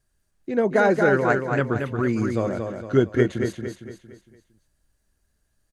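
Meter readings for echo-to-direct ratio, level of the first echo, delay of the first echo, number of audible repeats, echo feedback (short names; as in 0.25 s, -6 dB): -4.5 dB, -5.5 dB, 0.229 s, 5, 44%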